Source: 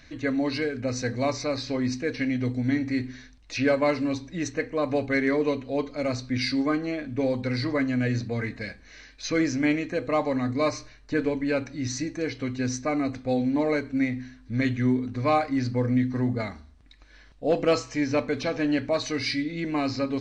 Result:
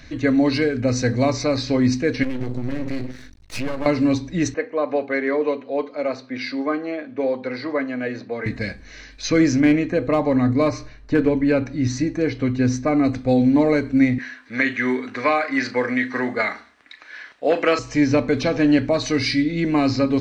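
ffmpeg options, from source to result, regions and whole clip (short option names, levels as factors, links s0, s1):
-filter_complex "[0:a]asettb=1/sr,asplit=3[s0][s1][s2];[s0]atrim=end=2.234[s3];[s1]atrim=start=2.23:end=3.86,asetpts=PTS-STARTPTS,afade=t=in:d=0.004:c=qsin,afade=t=out:st=1.626:d=0.004:c=qsin,acompressor=threshold=0.0447:ratio=6:attack=3.2:release=140:knee=1:detection=peak,aeval=exprs='max(val(0),0)':c=same[s4];[s2]atrim=start=3.856[s5];[s3][s4]acrossfade=d=0.004:c1=hsin:c2=qsin[s6];[s6][s5]acrossfade=d=0.004:c1=qsin:c2=hsin,asettb=1/sr,asplit=3[s7][s8][s9];[s7]atrim=end=4.544[s10];[s8]atrim=start=4.54:end=8.46,asetpts=PTS-STARTPTS,afade=t=in:d=0.004:c=qsin,afade=t=out:st=3.916:d=0.004:c=qsin,highpass=460,lowpass=4800,highshelf=f=2200:g=-9.5[s11];[s9]atrim=start=8.456[s12];[s10][s11]acrossfade=d=0.004:c1=hsin:c2=qsin[s13];[s13][s12]acrossfade=d=0.004:c1=qsin:c2=hsin,asettb=1/sr,asplit=3[s14][s15][s16];[s14]atrim=end=9.604[s17];[s15]atrim=start=9.6:end=13.04,asetpts=PTS-STARTPTS,afade=t=in:d=0.004:c=qsin,afade=t=out:st=3.436:d=0.004:c=qsin,highshelf=f=3800:g=-8.5,asoftclip=type=hard:threshold=0.141[s18];[s16]atrim=start=13.036[s19];[s17][s18]acrossfade=d=0.004:c1=hsin:c2=qsin[s20];[s20][s19]acrossfade=d=0.004:c1=qsin:c2=hsin,asettb=1/sr,asplit=3[s21][s22][s23];[s21]atrim=end=14.184[s24];[s22]atrim=start=14.18:end=17.79,asetpts=PTS-STARTPTS,afade=t=in:d=0.004:c=qsin,afade=t=out:st=3.606:d=0.004:c=qsin,highpass=410,equalizer=f=1800:t=o:w=1.6:g=12.5,asplit=2[s25][s26];[s26]adelay=37,volume=0.224[s27];[s25][s27]amix=inputs=2:normalize=0,atrim=end_sample=159201[s28];[s23]atrim=start=17.786[s29];[s24][s28]acrossfade=d=0.004:c1=hsin:c2=qsin[s30];[s30][s29]acrossfade=d=0.004:c1=qsin:c2=hsin,acrossover=split=340[s31][s32];[s32]acompressor=threshold=0.0631:ratio=6[s33];[s31][s33]amix=inputs=2:normalize=0,lowshelf=f=470:g=4,volume=2"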